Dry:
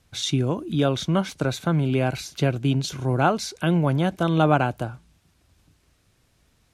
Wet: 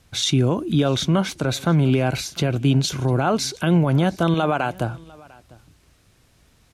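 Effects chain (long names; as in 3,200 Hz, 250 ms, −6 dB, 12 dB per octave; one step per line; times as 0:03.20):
0:04.34–0:04.74: low-shelf EQ 330 Hz −11 dB
brickwall limiter −16 dBFS, peak gain reduction 9.5 dB
single-tap delay 699 ms −24 dB
level +6 dB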